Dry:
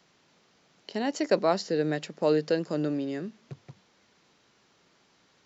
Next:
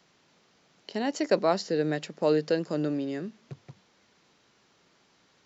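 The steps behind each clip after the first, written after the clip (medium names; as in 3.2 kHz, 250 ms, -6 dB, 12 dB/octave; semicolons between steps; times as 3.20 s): no audible change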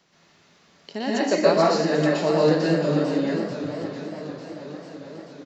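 delay 671 ms -11.5 dB; reverberation RT60 0.75 s, pre-delay 113 ms, DRR -6.5 dB; modulated delay 445 ms, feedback 75%, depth 144 cents, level -13 dB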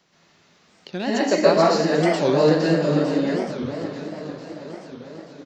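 in parallel at -11 dB: crossover distortion -37.5 dBFS; on the sum: warped record 45 rpm, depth 250 cents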